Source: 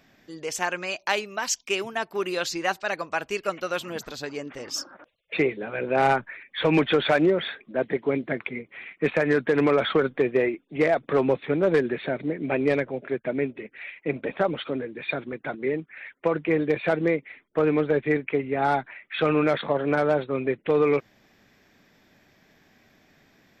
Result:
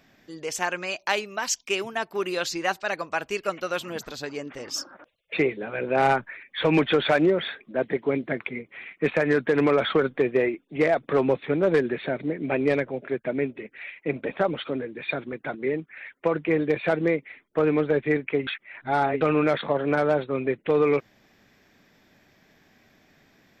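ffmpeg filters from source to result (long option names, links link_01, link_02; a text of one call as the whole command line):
ffmpeg -i in.wav -filter_complex "[0:a]asplit=3[link_01][link_02][link_03];[link_01]atrim=end=18.472[link_04];[link_02]atrim=start=18.468:end=19.212,asetpts=PTS-STARTPTS,areverse[link_05];[link_03]atrim=start=19.208[link_06];[link_04][link_05]acrossfade=duration=0.004:curve1=hsin:curve2=hsin[link_07];[link_07][link_06]acrossfade=duration=0.004:curve1=hsin:curve2=hsin" out.wav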